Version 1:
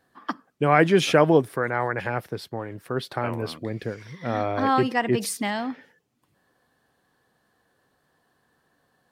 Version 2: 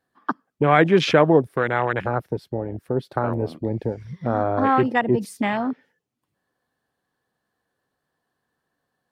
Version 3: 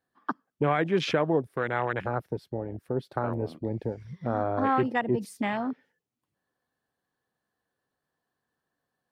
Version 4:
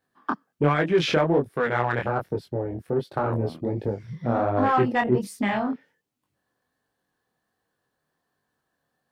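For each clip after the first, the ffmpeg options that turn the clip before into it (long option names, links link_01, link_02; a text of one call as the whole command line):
ffmpeg -i in.wav -filter_complex "[0:a]afwtdn=0.0398,asplit=2[link_01][link_02];[link_02]acompressor=threshold=-28dB:ratio=6,volume=2dB[link_03];[link_01][link_03]amix=inputs=2:normalize=0" out.wav
ffmpeg -i in.wav -af "alimiter=limit=-7dB:level=0:latency=1:release=445,volume=-6dB" out.wav
ffmpeg -i in.wav -filter_complex "[0:a]flanger=delay=19.5:depth=6.5:speed=1.3,asplit=2[link_01][link_02];[link_02]asoftclip=type=tanh:threshold=-30dB,volume=-8dB[link_03];[link_01][link_03]amix=inputs=2:normalize=0,volume=5.5dB" out.wav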